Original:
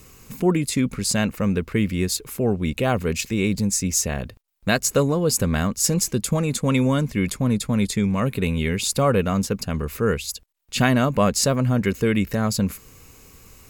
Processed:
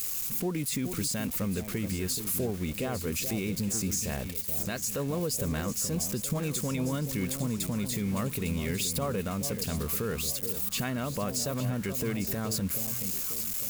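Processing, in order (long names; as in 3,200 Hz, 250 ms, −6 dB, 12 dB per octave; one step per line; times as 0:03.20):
spike at every zero crossing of −22 dBFS
downward compressor, threshold −20 dBFS, peak gain reduction 7.5 dB
brickwall limiter −16.5 dBFS, peak gain reduction 6 dB
delay that swaps between a low-pass and a high-pass 427 ms, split 890 Hz, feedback 65%, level −8 dB
level −5.5 dB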